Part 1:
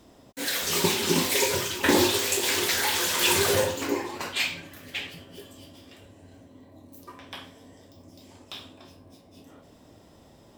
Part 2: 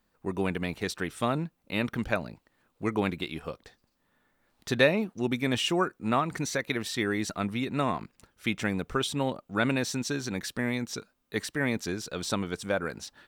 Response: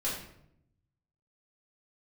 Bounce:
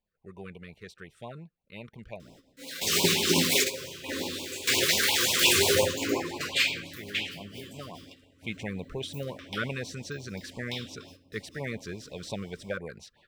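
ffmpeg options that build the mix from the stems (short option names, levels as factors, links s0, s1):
-filter_complex "[0:a]highshelf=f=2100:g=9.5,bandreject=f=50:t=h:w=6,bandreject=f=100:t=h:w=6,bandreject=f=150:t=h:w=6,bandreject=f=200:t=h:w=6,bandreject=f=250:t=h:w=6,adelay=2200,volume=0.794,asplit=2[s0][s1];[s1]volume=0.15[s2];[1:a]equalizer=f=280:w=3:g=-13,volume=0.75,afade=t=in:st=8.3:d=0.21:silence=0.375837,asplit=2[s3][s4];[s4]apad=whole_len=563194[s5];[s0][s5]sidechaingate=range=0.0224:threshold=0.001:ratio=16:detection=peak[s6];[2:a]atrim=start_sample=2205[s7];[s2][s7]afir=irnorm=-1:irlink=0[s8];[s6][s3][s8]amix=inputs=3:normalize=0,equalizer=f=14000:t=o:w=2:g=-10,afftfilt=real='re*(1-between(b*sr/1024,720*pow(1600/720,0.5+0.5*sin(2*PI*5.7*pts/sr))/1.41,720*pow(1600/720,0.5+0.5*sin(2*PI*5.7*pts/sr))*1.41))':imag='im*(1-between(b*sr/1024,720*pow(1600/720,0.5+0.5*sin(2*PI*5.7*pts/sr))/1.41,720*pow(1600/720,0.5+0.5*sin(2*PI*5.7*pts/sr))*1.41))':win_size=1024:overlap=0.75"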